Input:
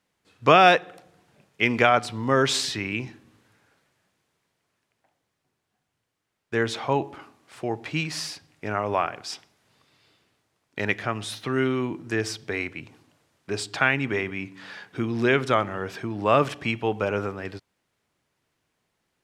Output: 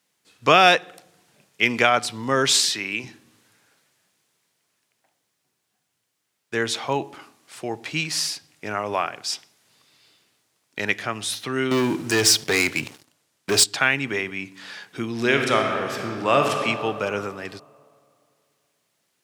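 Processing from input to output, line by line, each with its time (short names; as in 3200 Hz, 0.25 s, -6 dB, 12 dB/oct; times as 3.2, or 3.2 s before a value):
2.51–3.04 HPF 260 Hz 6 dB/oct
11.71–13.64 sample leveller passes 3
15.14–16.54 reverb throw, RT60 2.5 s, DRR 2.5 dB
whole clip: HPF 120 Hz; high shelf 3200 Hz +12 dB; gain -1 dB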